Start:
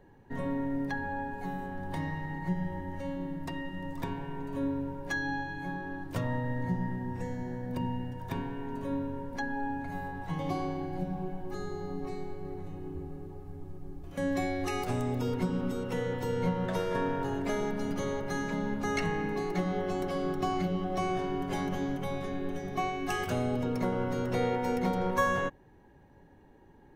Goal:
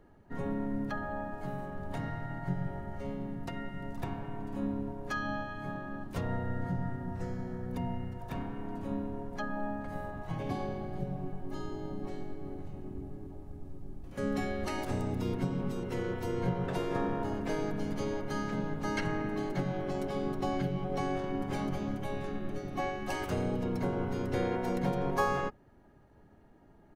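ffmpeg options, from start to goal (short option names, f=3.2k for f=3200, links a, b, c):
-filter_complex "[0:a]asplit=2[a][b];[b]asetrate=33038,aresample=44100,atempo=1.33484,volume=0dB[c];[a][c]amix=inputs=2:normalize=0,volume=-5dB"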